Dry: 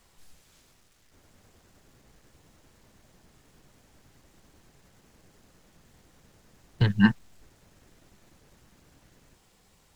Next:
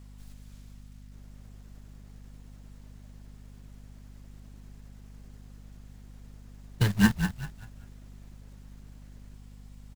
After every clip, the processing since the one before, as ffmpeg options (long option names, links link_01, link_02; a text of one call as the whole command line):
ffmpeg -i in.wav -filter_complex "[0:a]acrusher=bits=3:mode=log:mix=0:aa=0.000001,aeval=exprs='val(0)+0.00562*(sin(2*PI*50*n/s)+sin(2*PI*2*50*n/s)/2+sin(2*PI*3*50*n/s)/3+sin(2*PI*4*50*n/s)/4+sin(2*PI*5*50*n/s)/5)':channel_layout=same,asplit=5[link_01][link_02][link_03][link_04][link_05];[link_02]adelay=194,afreqshift=-34,volume=-8dB[link_06];[link_03]adelay=388,afreqshift=-68,volume=-17.6dB[link_07];[link_04]adelay=582,afreqshift=-102,volume=-27.3dB[link_08];[link_05]adelay=776,afreqshift=-136,volume=-36.9dB[link_09];[link_01][link_06][link_07][link_08][link_09]amix=inputs=5:normalize=0,volume=-2dB" out.wav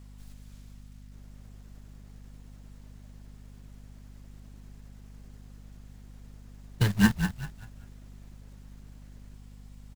ffmpeg -i in.wav -af anull out.wav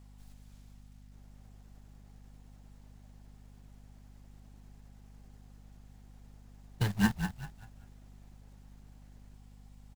ffmpeg -i in.wav -af "equalizer=frequency=790:width=3.8:gain=7.5,volume=-6dB" out.wav